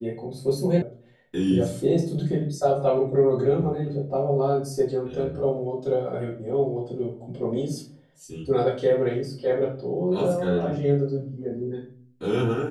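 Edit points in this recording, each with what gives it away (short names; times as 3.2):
0.82 sound cut off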